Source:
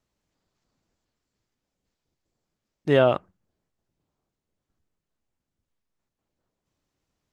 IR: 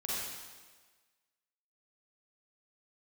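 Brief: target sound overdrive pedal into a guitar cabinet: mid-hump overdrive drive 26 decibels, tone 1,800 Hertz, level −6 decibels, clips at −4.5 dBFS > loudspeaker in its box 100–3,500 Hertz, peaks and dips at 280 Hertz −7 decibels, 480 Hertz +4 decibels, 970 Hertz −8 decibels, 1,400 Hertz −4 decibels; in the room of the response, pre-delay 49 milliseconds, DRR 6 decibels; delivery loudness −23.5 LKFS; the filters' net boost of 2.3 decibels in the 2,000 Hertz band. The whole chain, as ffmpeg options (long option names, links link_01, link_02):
-filter_complex "[0:a]equalizer=frequency=2000:width_type=o:gain=5,asplit=2[link_01][link_02];[1:a]atrim=start_sample=2205,adelay=49[link_03];[link_02][link_03]afir=irnorm=-1:irlink=0,volume=-10dB[link_04];[link_01][link_04]amix=inputs=2:normalize=0,asplit=2[link_05][link_06];[link_06]highpass=frequency=720:poles=1,volume=26dB,asoftclip=type=tanh:threshold=-4.5dB[link_07];[link_05][link_07]amix=inputs=2:normalize=0,lowpass=frequency=1800:poles=1,volume=-6dB,highpass=100,equalizer=frequency=280:width_type=q:width=4:gain=-7,equalizer=frequency=480:width_type=q:width=4:gain=4,equalizer=frequency=970:width_type=q:width=4:gain=-8,equalizer=frequency=1400:width_type=q:width=4:gain=-4,lowpass=frequency=3500:width=0.5412,lowpass=frequency=3500:width=1.3066,volume=-7dB"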